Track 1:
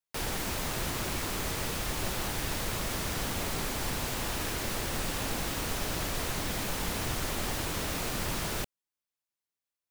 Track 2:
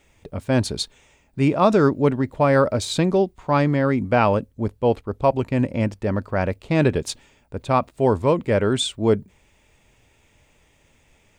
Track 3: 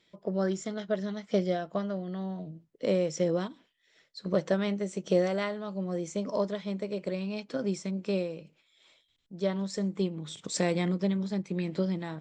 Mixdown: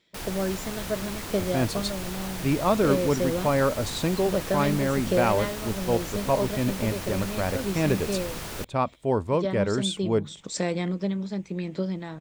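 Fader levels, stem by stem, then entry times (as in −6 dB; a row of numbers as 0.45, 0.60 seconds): −2.5, −6.0, +0.5 decibels; 0.00, 1.05, 0.00 seconds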